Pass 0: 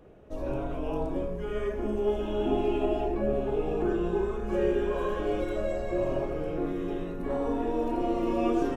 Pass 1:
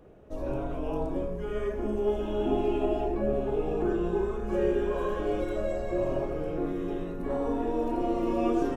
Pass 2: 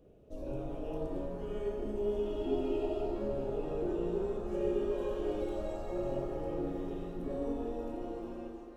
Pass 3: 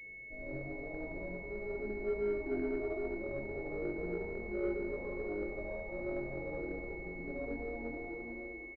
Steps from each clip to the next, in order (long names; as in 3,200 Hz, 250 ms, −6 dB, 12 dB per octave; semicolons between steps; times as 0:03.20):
parametric band 2,700 Hz −2.5 dB 1.4 octaves
fade-out on the ending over 1.33 s; flat-topped bell 1,300 Hz −9 dB; reverb with rising layers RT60 2.3 s, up +7 semitones, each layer −8 dB, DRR 4.5 dB; level −7 dB
on a send: repeating echo 73 ms, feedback 52%, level −6 dB; on the sum: chorus effect 1.3 Hz, delay 19.5 ms, depth 4.5 ms; switching amplifier with a slow clock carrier 2,200 Hz; level −2.5 dB